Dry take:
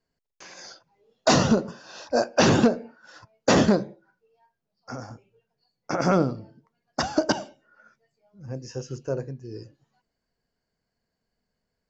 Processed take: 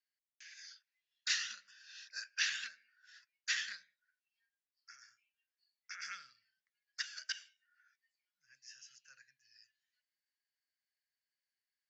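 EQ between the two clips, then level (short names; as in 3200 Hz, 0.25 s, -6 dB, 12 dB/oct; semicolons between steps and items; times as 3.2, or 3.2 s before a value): elliptic high-pass 1700 Hz, stop band 50 dB; LPF 3800 Hz 6 dB/oct; -5.0 dB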